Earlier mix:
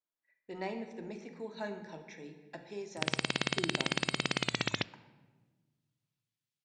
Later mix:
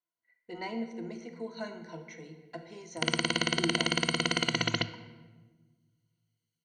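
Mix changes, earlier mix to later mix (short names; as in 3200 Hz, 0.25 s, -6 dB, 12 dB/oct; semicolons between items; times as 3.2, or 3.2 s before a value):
background: send +8.5 dB; master: add ripple EQ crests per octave 1.9, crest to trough 16 dB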